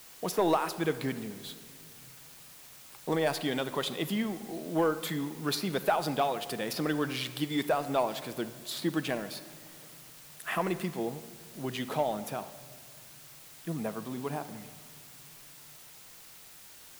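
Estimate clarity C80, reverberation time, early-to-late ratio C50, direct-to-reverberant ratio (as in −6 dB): 14.5 dB, 2.0 s, 13.0 dB, 11.0 dB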